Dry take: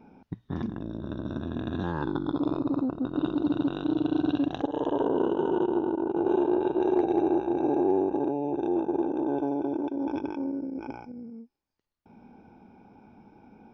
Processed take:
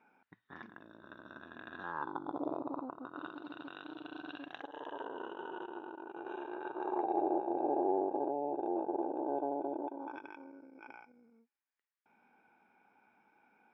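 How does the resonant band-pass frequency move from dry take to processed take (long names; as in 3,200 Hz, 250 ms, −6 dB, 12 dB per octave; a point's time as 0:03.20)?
resonant band-pass, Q 2.1
0:01.72 1,700 Hz
0:02.46 640 Hz
0:03.47 1,900 Hz
0:06.50 1,900 Hz
0:07.24 680 Hz
0:09.83 680 Hz
0:10.25 1,800 Hz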